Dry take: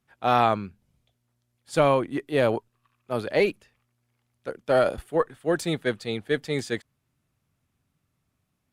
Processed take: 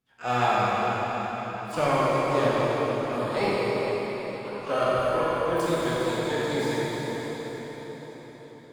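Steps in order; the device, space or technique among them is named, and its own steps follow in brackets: shimmer-style reverb (harmoniser +12 st -8 dB; reverb RT60 5.6 s, pre-delay 24 ms, DRR -7.5 dB); 3.19–4.61 notch 6100 Hz, Q 5.7; gain -8.5 dB

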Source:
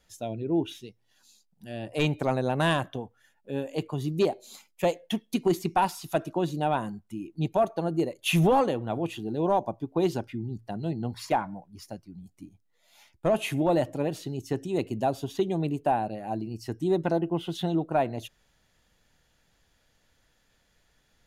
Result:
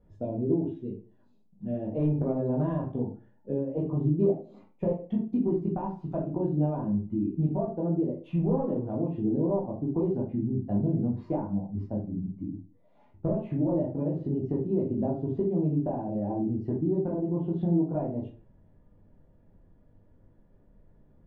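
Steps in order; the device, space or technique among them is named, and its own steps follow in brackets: television next door (compressor 5:1, threshold -35 dBFS, peak gain reduction 14.5 dB; LPF 410 Hz 12 dB/oct; reverb RT60 0.35 s, pre-delay 12 ms, DRR -4 dB); gain +8 dB

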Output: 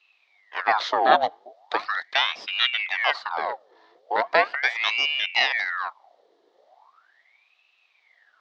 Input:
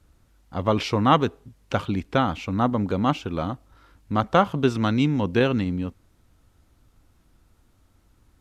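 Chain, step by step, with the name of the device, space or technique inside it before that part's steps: voice changer toy (ring modulator with a swept carrier 1500 Hz, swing 75%, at 0.39 Hz; speaker cabinet 580–4900 Hz, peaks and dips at 720 Hz +6 dB, 1500 Hz -6 dB, 2500 Hz -8 dB, 3800 Hz +4 dB); gain +4 dB

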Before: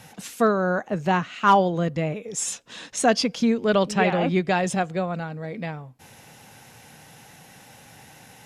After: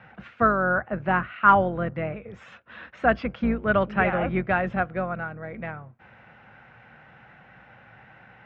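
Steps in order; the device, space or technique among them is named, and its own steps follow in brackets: sub-octave bass pedal (octaver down 2 oct, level 0 dB; speaker cabinet 78–2300 Hz, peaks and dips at 88 Hz -10 dB, 160 Hz -6 dB, 280 Hz -9 dB, 430 Hz -7 dB, 880 Hz -4 dB, 1400 Hz +7 dB)

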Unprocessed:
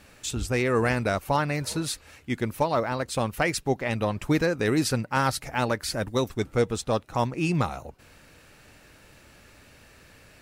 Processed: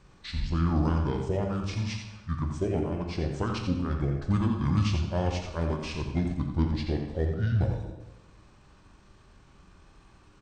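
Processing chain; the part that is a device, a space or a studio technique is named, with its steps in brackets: monster voice (pitch shift -7 st; formant shift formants -3 st; low shelf 220 Hz +8.5 dB; echo 86 ms -8 dB; reverb RT60 1.1 s, pre-delay 13 ms, DRR 4.5 dB); gain -8.5 dB

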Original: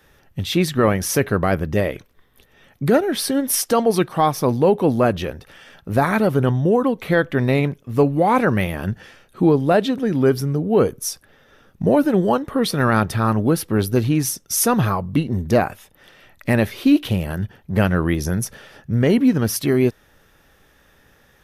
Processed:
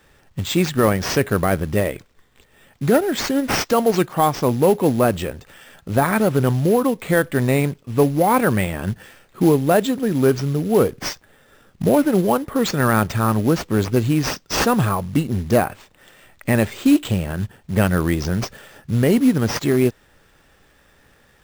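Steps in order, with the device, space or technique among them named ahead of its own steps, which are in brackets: early companding sampler (sample-rate reducer 11000 Hz, jitter 0%; companded quantiser 6-bit)

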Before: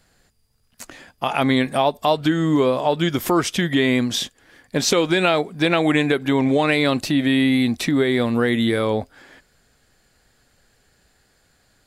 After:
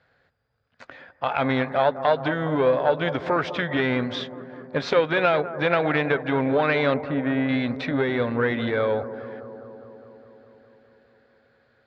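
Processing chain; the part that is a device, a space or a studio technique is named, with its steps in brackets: 6.94–7.49 LPF 1700 Hz 12 dB/oct; analogue delay pedal into a guitar amplifier (analogue delay 0.204 s, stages 2048, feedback 74%, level -14 dB; tube stage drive 8 dB, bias 0.55; speaker cabinet 98–3500 Hz, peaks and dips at 200 Hz -10 dB, 330 Hz -8 dB, 530 Hz +5 dB, 1500 Hz +5 dB, 2900 Hz -6 dB)

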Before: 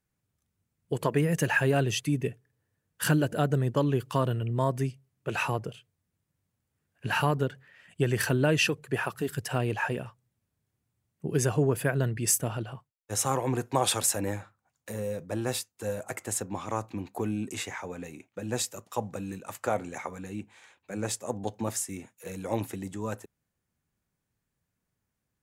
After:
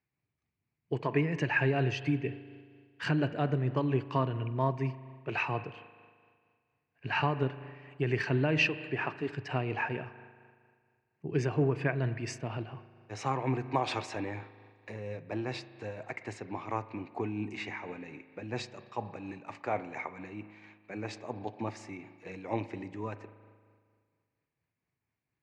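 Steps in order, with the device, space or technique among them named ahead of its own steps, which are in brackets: combo amplifier with spring reverb and tremolo (spring tank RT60 1.9 s, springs 38 ms, chirp 25 ms, DRR 12.5 dB; tremolo 4.3 Hz, depth 31%; speaker cabinet 84–4200 Hz, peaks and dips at 87 Hz -7 dB, 200 Hz -9 dB, 520 Hz -7 dB, 1400 Hz -6 dB, 2300 Hz +6 dB, 3400 Hz -10 dB)

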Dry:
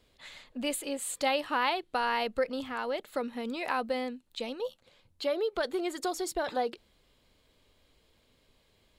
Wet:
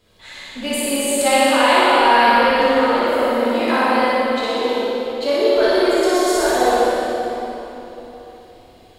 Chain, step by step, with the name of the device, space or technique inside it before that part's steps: tunnel (flutter echo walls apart 10.3 m, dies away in 0.99 s; reverb RT60 3.6 s, pre-delay 8 ms, DRR -8.5 dB); gain +4.5 dB

